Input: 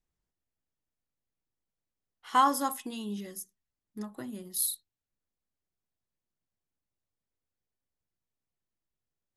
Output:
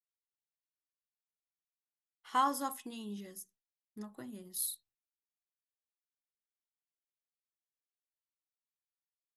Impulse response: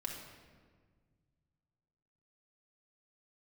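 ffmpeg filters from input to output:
-af "agate=range=-33dB:threshold=-55dB:ratio=3:detection=peak,volume=-6.5dB"

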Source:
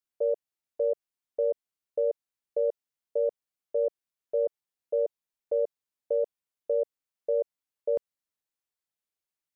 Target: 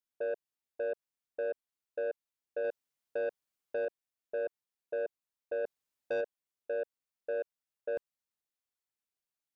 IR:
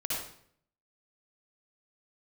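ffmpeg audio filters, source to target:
-filter_complex "[0:a]asettb=1/sr,asplit=3[a][b][c];[a]atrim=end=2.644[d];[b]atrim=start=2.64:end=3.85,asetpts=PTS-STARTPTS,afade=t=in:d=0.004:c=qsin,afade=t=out:st=1.206:d=0.004:c=qsin,acontrast=32[e];[c]atrim=start=3.846[f];[d][e]acrossfade=d=0.004:c1=hsin:c2=qsin[g];[g][f]acrossfade=d=0.004:c1=qsin:c2=hsin,alimiter=limit=-17.5dB:level=0:latency=1:release=11,asplit=3[h][i][j];[h]afade=t=out:st=5.64:d=0.02[k];[i]acontrast=38,afade=t=in:st=5.64:d=0.02,afade=t=out:st=6.2:d=0.02[l];[j]afade=t=in:st=6.2:d=0.02[m];[k][l][m]amix=inputs=3:normalize=0,asoftclip=type=tanh:threshold=-25.5dB,volume=-3.5dB"

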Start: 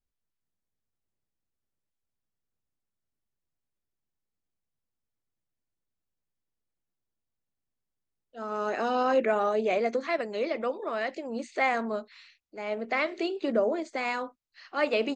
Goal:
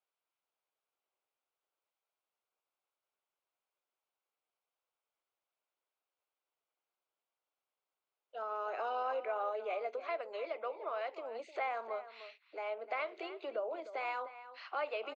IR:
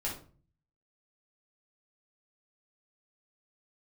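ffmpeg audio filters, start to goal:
-filter_complex "[0:a]highpass=f=300:w=0.5412,highpass=f=300:w=1.3066,equalizer=f=1.8k:t=o:w=0.29:g=-12.5,acompressor=threshold=-48dB:ratio=2.5,acrossover=split=490 3200:gain=0.0708 1 0.0891[a][b][c];[a][b][c]amix=inputs=3:normalize=0,asplit=2[d][e];[e]adelay=303.2,volume=-13dB,highshelf=f=4k:g=-6.82[f];[d][f]amix=inputs=2:normalize=0,volume=8dB"

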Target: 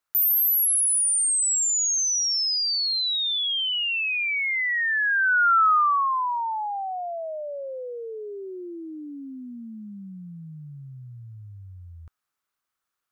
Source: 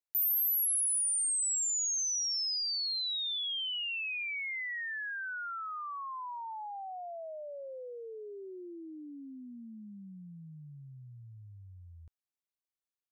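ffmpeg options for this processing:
-af "equalizer=f=1.3k:t=o:w=0.79:g=13,volume=8.5dB"

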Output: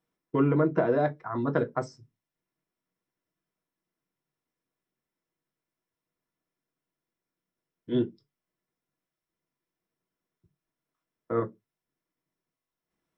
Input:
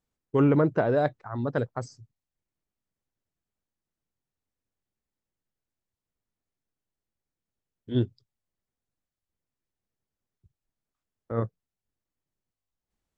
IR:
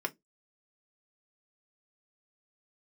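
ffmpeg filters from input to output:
-filter_complex "[0:a]acompressor=threshold=-25dB:ratio=6[a];[1:a]atrim=start_sample=2205[b];[a][b]afir=irnorm=-1:irlink=0"

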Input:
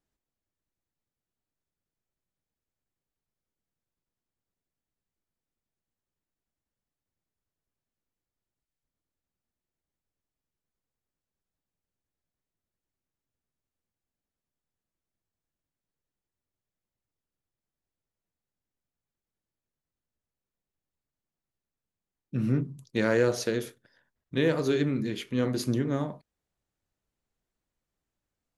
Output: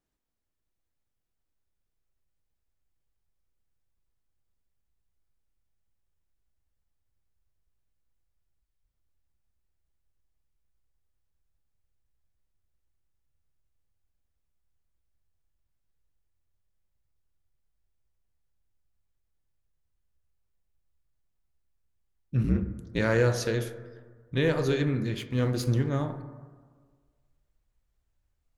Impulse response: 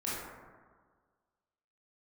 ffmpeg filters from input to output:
-filter_complex "[0:a]asubboost=boost=6.5:cutoff=85,asplit=3[a][b][c];[a]afade=t=out:st=22.43:d=0.02[d];[b]aeval=exprs='val(0)*sin(2*PI*59*n/s)':c=same,afade=t=in:st=22.43:d=0.02,afade=t=out:st=22.98:d=0.02[e];[c]afade=t=in:st=22.98:d=0.02[f];[d][e][f]amix=inputs=3:normalize=0,asettb=1/sr,asplit=3[g][h][i];[g]atrim=end=25.184[j];[h]atrim=start=25.18:end=25.89,asetpts=PTS-STARTPTS,afade=t=in:d=0.004:c=qsin,afade=t=out:st=0.706:d=0.004:c=qsin,aeval=exprs='sgn(val(0))*max(abs(val(0))-0.00355,0)':c=same[k];[i]atrim=start=25.886[l];[j][k]acrossfade=d=0.004:c1=hsin:c2=qsin[m];[m][l]acrossfade=d=0.004:c1=qsin:c2=hsin,asplit=2[n][o];[1:a]atrim=start_sample=2205,lowpass=4.5k[p];[o][p]afir=irnorm=-1:irlink=0,volume=-13.5dB[q];[n][q]amix=inputs=2:normalize=0"

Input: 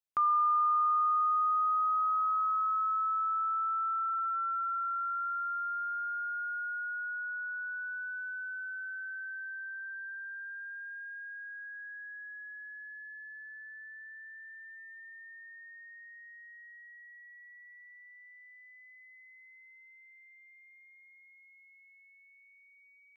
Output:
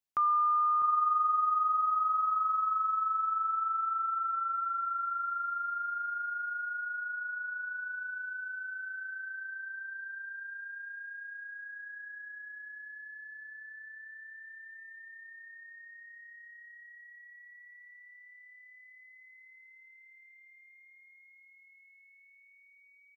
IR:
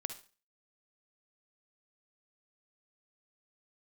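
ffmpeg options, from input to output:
-filter_complex "[0:a]asplit=2[a][b];[b]adelay=651,lowpass=f=840:p=1,volume=-6dB,asplit=2[c][d];[d]adelay=651,lowpass=f=840:p=1,volume=0.32,asplit=2[e][f];[f]adelay=651,lowpass=f=840:p=1,volume=0.32,asplit=2[g][h];[h]adelay=651,lowpass=f=840:p=1,volume=0.32[i];[a][c][e][g][i]amix=inputs=5:normalize=0"

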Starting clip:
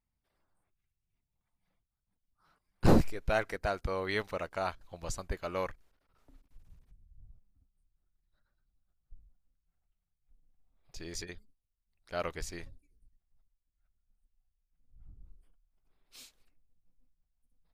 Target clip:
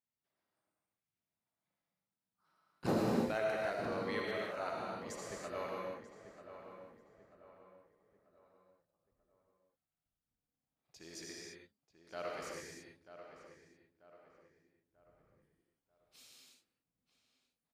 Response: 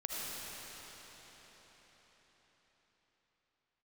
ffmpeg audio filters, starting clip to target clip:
-filter_complex "[0:a]highpass=160,asplit=2[a][b];[b]adelay=939,lowpass=f=2.2k:p=1,volume=-11dB,asplit=2[c][d];[d]adelay=939,lowpass=f=2.2k:p=1,volume=0.42,asplit=2[e][f];[f]adelay=939,lowpass=f=2.2k:p=1,volume=0.42,asplit=2[g][h];[h]adelay=939,lowpass=f=2.2k:p=1,volume=0.42[i];[a][c][e][g][i]amix=inputs=5:normalize=0[j];[1:a]atrim=start_sample=2205,afade=t=out:st=0.39:d=0.01,atrim=end_sample=17640[k];[j][k]afir=irnorm=-1:irlink=0,volume=-6dB"

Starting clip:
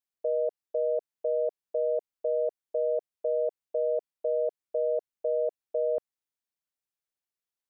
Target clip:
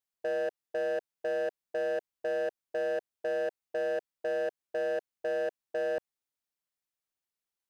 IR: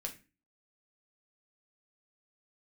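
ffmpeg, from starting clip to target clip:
-af "asoftclip=type=hard:threshold=-28dB"

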